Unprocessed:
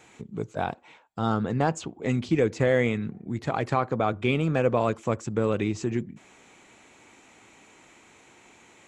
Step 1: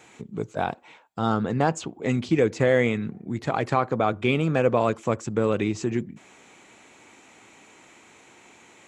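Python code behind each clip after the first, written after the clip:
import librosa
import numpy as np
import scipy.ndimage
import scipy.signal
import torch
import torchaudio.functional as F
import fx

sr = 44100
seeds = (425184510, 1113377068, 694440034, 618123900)

y = fx.low_shelf(x, sr, hz=61.0, db=-10.5)
y = y * librosa.db_to_amplitude(2.5)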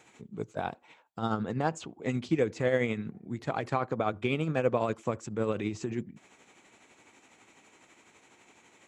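y = x * (1.0 - 0.48 / 2.0 + 0.48 / 2.0 * np.cos(2.0 * np.pi * 12.0 * (np.arange(len(x)) / sr)))
y = y * librosa.db_to_amplitude(-5.0)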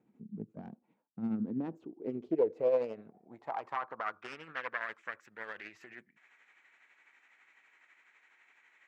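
y = fx.self_delay(x, sr, depth_ms=0.46)
y = fx.filter_sweep_bandpass(y, sr, from_hz=210.0, to_hz=1800.0, start_s=1.19, end_s=4.69, q=3.3)
y = y * librosa.db_to_amplitude(2.5)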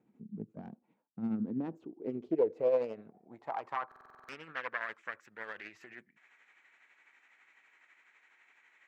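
y = fx.buffer_glitch(x, sr, at_s=(3.87,), block=2048, repeats=8)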